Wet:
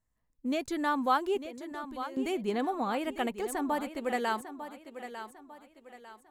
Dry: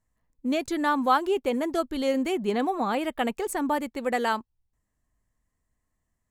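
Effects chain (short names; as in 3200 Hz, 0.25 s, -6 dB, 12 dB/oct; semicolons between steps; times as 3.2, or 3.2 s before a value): 1.42–2.17 level quantiser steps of 20 dB; thinning echo 0.899 s, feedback 39%, high-pass 160 Hz, level -11 dB; gain -5 dB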